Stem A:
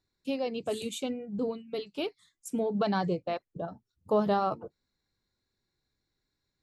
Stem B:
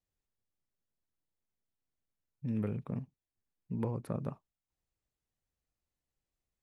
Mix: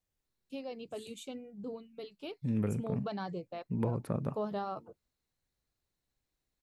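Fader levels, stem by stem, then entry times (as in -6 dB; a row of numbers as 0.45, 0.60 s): -10.0, +2.5 dB; 0.25, 0.00 s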